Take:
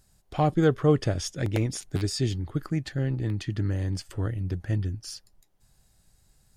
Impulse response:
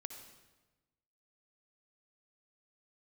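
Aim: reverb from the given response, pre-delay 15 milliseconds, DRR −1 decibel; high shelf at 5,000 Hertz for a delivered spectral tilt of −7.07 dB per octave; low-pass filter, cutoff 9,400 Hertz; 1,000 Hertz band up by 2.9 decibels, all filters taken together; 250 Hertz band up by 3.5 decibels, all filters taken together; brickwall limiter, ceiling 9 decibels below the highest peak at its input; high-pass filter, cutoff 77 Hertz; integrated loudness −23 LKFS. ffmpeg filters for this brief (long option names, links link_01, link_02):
-filter_complex "[0:a]highpass=77,lowpass=9400,equalizer=frequency=250:width_type=o:gain=5,equalizer=frequency=1000:width_type=o:gain=4,highshelf=frequency=5000:gain=-4,alimiter=limit=-16dB:level=0:latency=1,asplit=2[link_01][link_02];[1:a]atrim=start_sample=2205,adelay=15[link_03];[link_02][link_03]afir=irnorm=-1:irlink=0,volume=4.5dB[link_04];[link_01][link_04]amix=inputs=2:normalize=0,volume=3dB"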